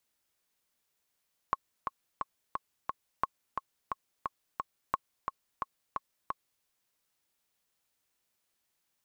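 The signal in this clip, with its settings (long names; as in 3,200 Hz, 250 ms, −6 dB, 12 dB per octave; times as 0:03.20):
click track 176 BPM, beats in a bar 5, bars 3, 1,090 Hz, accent 5.5 dB −14 dBFS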